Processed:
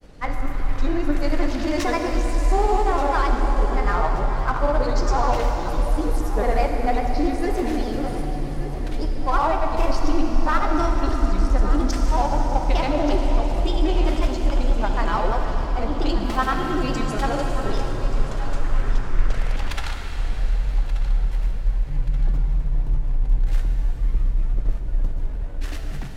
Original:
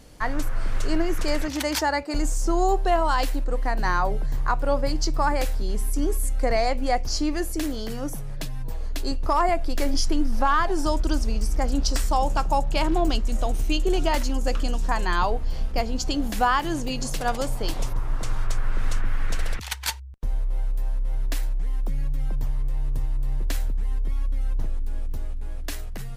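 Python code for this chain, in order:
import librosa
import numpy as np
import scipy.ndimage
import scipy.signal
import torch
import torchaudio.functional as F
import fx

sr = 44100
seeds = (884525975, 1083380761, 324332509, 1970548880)

p1 = fx.lowpass(x, sr, hz=2300.0, slope=6)
p2 = np.clip(p1, -10.0 ** (-28.5 / 20.0), 10.0 ** (-28.5 / 20.0))
p3 = p1 + (p2 * 10.0 ** (-3.5 / 20.0))
p4 = fx.granulator(p3, sr, seeds[0], grain_ms=100.0, per_s=20.0, spray_ms=100.0, spread_st=3)
p5 = fx.echo_feedback(p4, sr, ms=1180, feedback_pct=44, wet_db=-13.5)
y = fx.rev_plate(p5, sr, seeds[1], rt60_s=4.9, hf_ratio=1.0, predelay_ms=0, drr_db=2.0)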